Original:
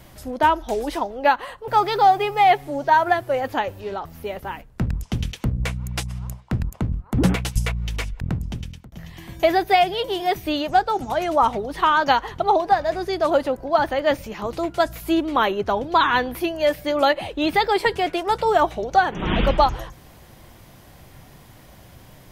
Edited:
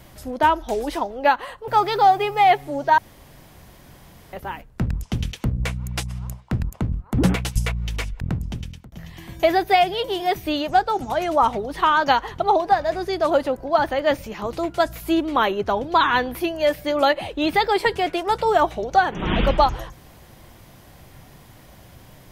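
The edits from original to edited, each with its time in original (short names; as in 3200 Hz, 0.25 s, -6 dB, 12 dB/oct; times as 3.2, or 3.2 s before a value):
2.98–4.33 room tone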